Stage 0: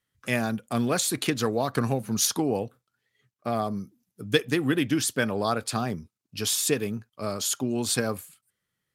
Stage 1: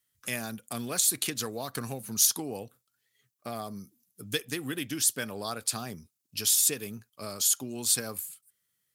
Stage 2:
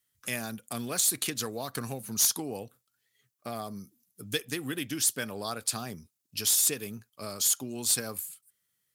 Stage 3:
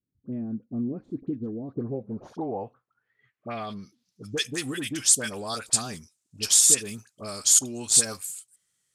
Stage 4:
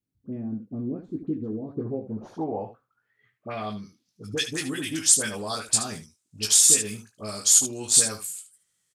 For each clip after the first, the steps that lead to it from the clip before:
in parallel at +2.5 dB: compressor, threshold -32 dBFS, peak gain reduction 15.5 dB; on the sum: pre-emphasis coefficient 0.8
overloaded stage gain 18 dB
dispersion highs, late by 57 ms, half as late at 1200 Hz; low-pass sweep 290 Hz -> 7900 Hz, 1.61–4.57; gain +2.5 dB
early reflections 19 ms -6 dB, 75 ms -11 dB

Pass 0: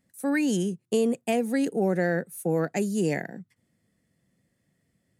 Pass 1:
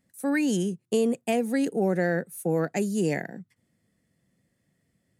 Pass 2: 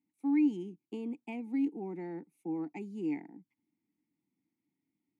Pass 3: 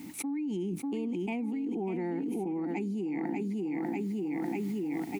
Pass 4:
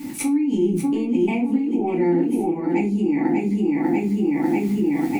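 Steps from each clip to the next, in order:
nothing audible
vowel filter u
limiter -30.5 dBFS, peak gain reduction 10 dB; on a send: feedback echo 0.594 s, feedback 38%, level -10.5 dB; on the sum: fast leveller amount 100%
shoebox room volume 140 m³, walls furnished, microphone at 2.4 m; gain +5.5 dB

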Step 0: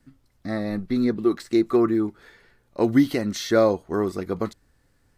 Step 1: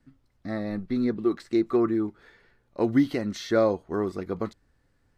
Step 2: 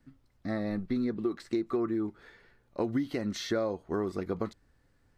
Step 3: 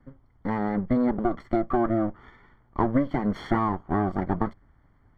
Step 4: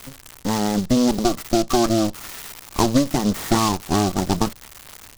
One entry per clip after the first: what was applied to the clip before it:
high shelf 7000 Hz -11.5 dB; gain -3.5 dB
compressor 6:1, threshold -27 dBFS, peak gain reduction 11 dB
minimum comb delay 0.93 ms; polynomial smoothing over 41 samples; gain +9 dB
switching spikes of -27 dBFS; noise-modulated delay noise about 4700 Hz, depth 0.079 ms; gain +5.5 dB

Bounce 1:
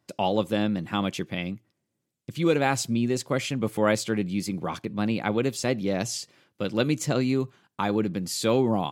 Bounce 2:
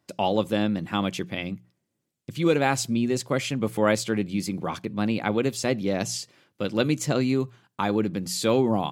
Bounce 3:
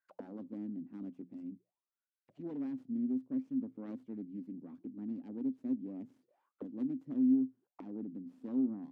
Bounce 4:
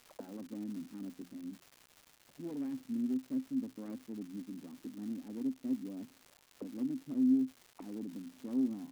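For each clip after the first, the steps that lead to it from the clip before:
notches 60/120/180 Hz; gain +1 dB
self-modulated delay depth 0.64 ms; auto-wah 260–1600 Hz, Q 15, down, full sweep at -28.5 dBFS
crackle 360/s -46 dBFS

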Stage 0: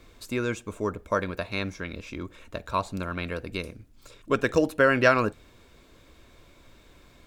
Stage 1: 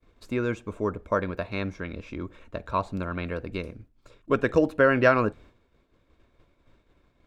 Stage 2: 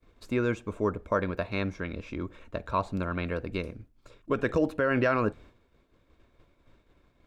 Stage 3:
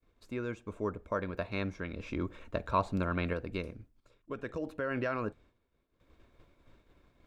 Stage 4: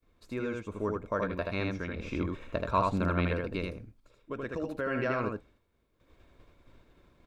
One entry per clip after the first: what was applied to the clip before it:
expander -45 dBFS; LPF 1700 Hz 6 dB/oct; gain +1.5 dB
limiter -15.5 dBFS, peak gain reduction 8.5 dB
random-step tremolo 1.5 Hz, depth 75%
echo 79 ms -3 dB; gain +1.5 dB

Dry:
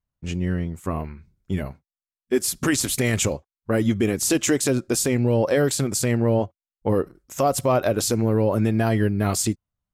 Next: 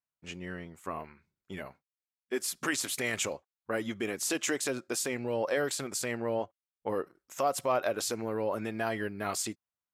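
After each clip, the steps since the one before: HPF 1400 Hz 6 dB/oct; high shelf 3000 Hz -10.5 dB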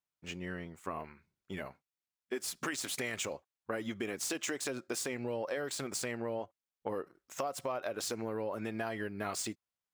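median filter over 3 samples; compressor, threshold -33 dBFS, peak gain reduction 9.5 dB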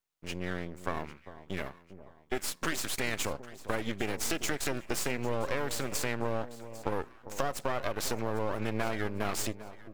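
half-wave rectifier; echo with dull and thin repeats by turns 0.4 s, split 1000 Hz, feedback 56%, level -13 dB; gain +7.5 dB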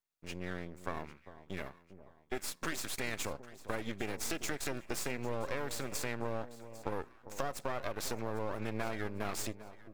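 notch 3000 Hz, Q 21; gain -5 dB

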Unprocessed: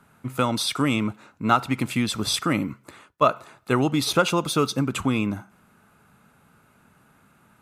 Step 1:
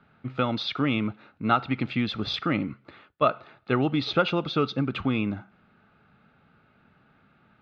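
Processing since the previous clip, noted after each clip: steep low-pass 4200 Hz 36 dB/oct; notch 1000 Hz, Q 6.3; gain -2.5 dB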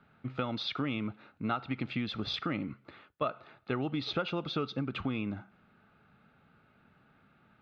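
compressor 2.5:1, threshold -28 dBFS, peak gain reduction 8.5 dB; gain -3.5 dB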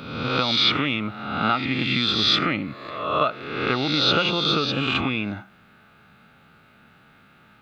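spectral swells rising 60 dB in 1.10 s; high shelf 2000 Hz +10 dB; gain +6 dB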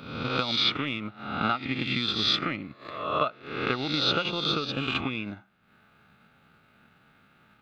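transient shaper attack +6 dB, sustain -8 dB; gain -6.5 dB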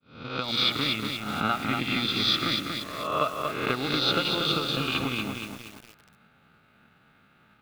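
opening faded in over 0.59 s; lo-fi delay 0.236 s, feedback 55%, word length 7-bit, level -4 dB

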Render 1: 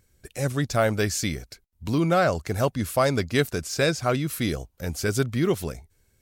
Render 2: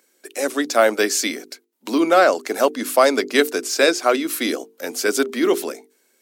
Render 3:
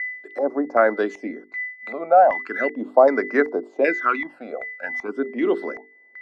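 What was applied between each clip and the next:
steep high-pass 250 Hz 48 dB/oct; notches 50/100/150/200/250/300/350/400/450 Hz; gain +7.5 dB
whine 2000 Hz -26 dBFS; LFO low-pass square 1.3 Hz 820–1700 Hz; phaser stages 12, 0.38 Hz, lowest notch 300–3200 Hz; gain -3 dB

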